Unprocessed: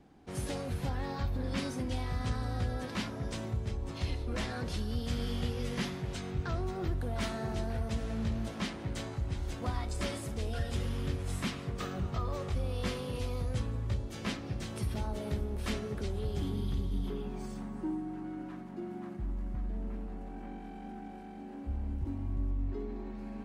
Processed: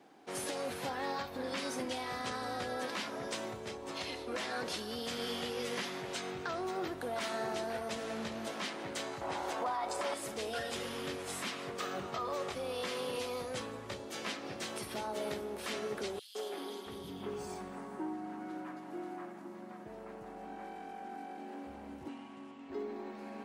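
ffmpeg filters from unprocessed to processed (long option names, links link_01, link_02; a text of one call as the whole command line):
ffmpeg -i in.wav -filter_complex "[0:a]asettb=1/sr,asplit=3[link_01][link_02][link_03];[link_01]atrim=end=9.214[link_04];[link_02]atrim=start=9.21:end=10.14,asetpts=PTS-STARTPTS,afade=type=in:duration=0.004:curve=qsin,afade=type=out:start_time=0.926:duration=0.004:curve=qsin,equalizer=frequency=850:width=0.83:gain=13[link_05];[link_03]atrim=start=10.136[link_06];[link_04][link_05]acrossfade=duration=0.004:curve1=hsin:curve2=qsin[link_07];[link_07][link_06]acrossfade=duration=0.004:curve1=qsin:curve2=hsin,asettb=1/sr,asplit=3[link_08][link_09][link_10];[link_08]atrim=end=16.194[link_11];[link_09]atrim=start=16.19:end=21.38,asetpts=PTS-STARTPTS,afade=type=in:duration=0.004:curve=qsin,afade=type=out:start_time=5.186:duration=0.004:curve=qsin,acrossover=split=270|3000[link_12][link_13][link_14];[link_13]adelay=160[link_15];[link_12]adelay=670[link_16];[link_16][link_15][link_14]amix=inputs=3:normalize=0,atrim=end_sample=228879[link_17];[link_10]atrim=start=21.376[link_18];[link_11][link_17]acrossfade=duration=0.004:curve1=hsin:curve2=qsin[link_19];[link_19][link_18]acrossfade=duration=0.004:curve1=qsin:curve2=hsin,asettb=1/sr,asplit=3[link_20][link_21][link_22];[link_20]atrim=end=22.084[link_23];[link_21]atrim=start=22.08:end=22.7,asetpts=PTS-STARTPTS,afade=type=in:duration=0.004:curve=qsin,afade=type=out:start_time=0.616:duration=0.004:curve=qsin,highpass=frequency=160:width=0.5412,highpass=frequency=160:width=1.3066,equalizer=frequency=320:width_type=q:width=4:gain=-10,equalizer=frequency=610:width_type=q:width=4:gain=-8,equalizer=frequency=2900:width_type=q:width=4:gain=9,lowpass=frequency=9900:width=0.5412,lowpass=frequency=9900:width=1.3066[link_24];[link_22]atrim=start=22.696[link_25];[link_23][link_24]acrossfade=duration=0.004:curve1=hsin:curve2=qsin[link_26];[link_26][link_25]acrossfade=duration=0.004:curve1=qsin:curve2=hsin,highpass=400,alimiter=level_in=8dB:limit=-24dB:level=0:latency=1:release=150,volume=-8dB,volume=5dB" out.wav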